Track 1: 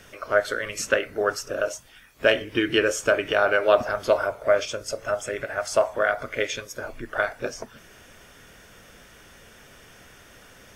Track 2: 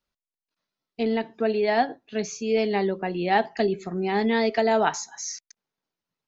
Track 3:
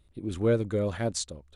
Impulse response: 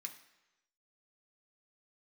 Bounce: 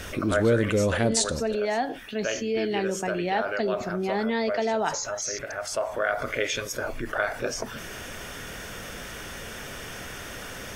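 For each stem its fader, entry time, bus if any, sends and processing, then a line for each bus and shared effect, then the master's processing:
-8.0 dB, 0.00 s, no send, auto duck -11 dB, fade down 0.20 s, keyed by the second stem
-11.0 dB, 0.00 s, no send, none
+1.5 dB, 0.00 s, send -5 dB, none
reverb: on, pre-delay 3 ms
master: level flattener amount 50%

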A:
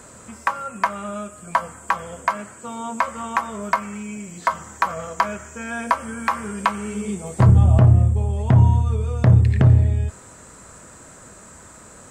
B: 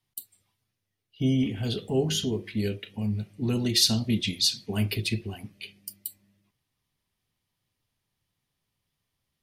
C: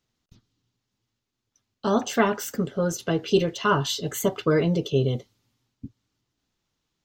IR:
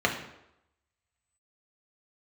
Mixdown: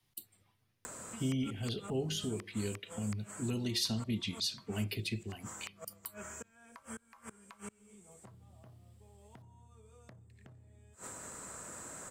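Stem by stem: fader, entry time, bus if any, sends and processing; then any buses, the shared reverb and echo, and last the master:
-0.5 dB, 0.85 s, bus A, no send, treble shelf 7.7 kHz +12 dB; compression 6:1, threshold -26 dBFS, peak gain reduction 16.5 dB; inverted gate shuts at -24 dBFS, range -32 dB
-8.0 dB, 0.00 s, no bus, no send, none
mute
bus A: 0.0 dB, bass shelf 120 Hz -11.5 dB; compression 5:1, threshold -48 dBFS, peak gain reduction 17 dB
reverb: none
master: three bands compressed up and down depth 40%

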